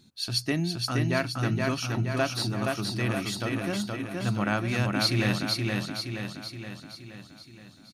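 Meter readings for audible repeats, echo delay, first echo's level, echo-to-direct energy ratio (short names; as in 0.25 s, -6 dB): 6, 0.472 s, -3.0 dB, -1.5 dB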